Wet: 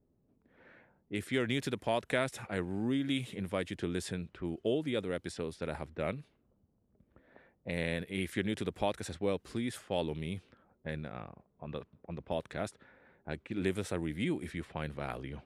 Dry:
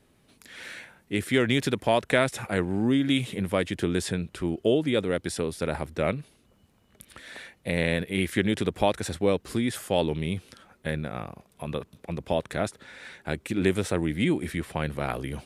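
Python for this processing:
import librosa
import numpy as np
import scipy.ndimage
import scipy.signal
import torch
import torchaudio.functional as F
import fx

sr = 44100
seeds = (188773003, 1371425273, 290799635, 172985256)

y = fx.env_lowpass(x, sr, base_hz=500.0, full_db=-24.0)
y = F.gain(torch.from_numpy(y), -9.0).numpy()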